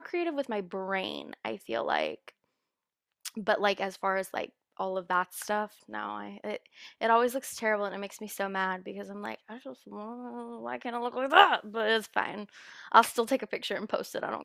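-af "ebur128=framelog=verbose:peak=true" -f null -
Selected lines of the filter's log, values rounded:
Integrated loudness:
  I:         -30.0 LUFS
  Threshold: -40.7 LUFS
Loudness range:
  LRA:         8.3 LU
  Threshold: -50.9 LUFS
  LRA low:   -35.1 LUFS
  LRA high:  -26.9 LUFS
True peak:
  Peak:       -3.8 dBFS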